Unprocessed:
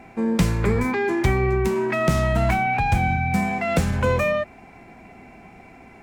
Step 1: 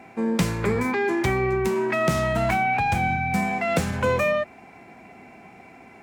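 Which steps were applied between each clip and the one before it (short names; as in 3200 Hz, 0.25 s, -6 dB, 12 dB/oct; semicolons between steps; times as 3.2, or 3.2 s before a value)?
HPF 71 Hz; low shelf 150 Hz -7 dB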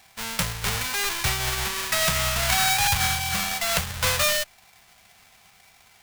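half-waves squared off; passive tone stack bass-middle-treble 10-0-10; upward expander 1.5:1, over -41 dBFS; gain +4.5 dB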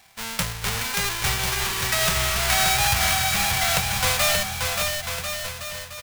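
bouncing-ball echo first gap 0.58 s, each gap 0.8×, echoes 5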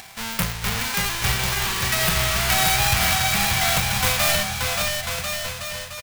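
self-modulated delay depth 0.17 ms; upward compressor, threshold -36 dBFS; doubler 41 ms -12 dB; gain +3.5 dB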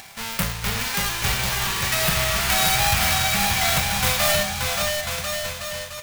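reverb, pre-delay 3 ms, DRR 7 dB; gain -1 dB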